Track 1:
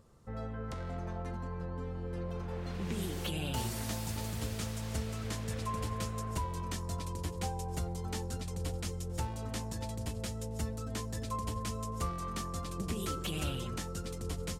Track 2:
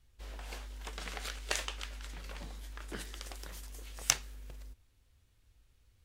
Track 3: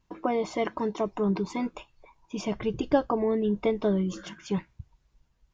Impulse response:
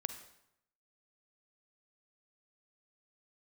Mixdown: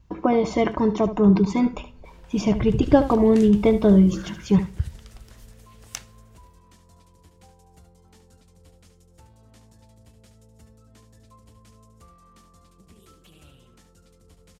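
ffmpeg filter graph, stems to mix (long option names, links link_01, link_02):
-filter_complex "[0:a]volume=-16.5dB,asplit=2[link_01][link_02];[link_02]volume=-8.5dB[link_03];[1:a]adelay=1850,volume=-7dB[link_04];[2:a]equalizer=frequency=65:width=0.41:gain=15,volume=2.5dB,asplit=3[link_05][link_06][link_07];[link_06]volume=-10.5dB[link_08];[link_07]volume=-10.5dB[link_09];[3:a]atrim=start_sample=2205[link_10];[link_08][link_10]afir=irnorm=-1:irlink=0[link_11];[link_03][link_09]amix=inputs=2:normalize=0,aecho=0:1:73:1[link_12];[link_01][link_04][link_05][link_11][link_12]amix=inputs=5:normalize=0"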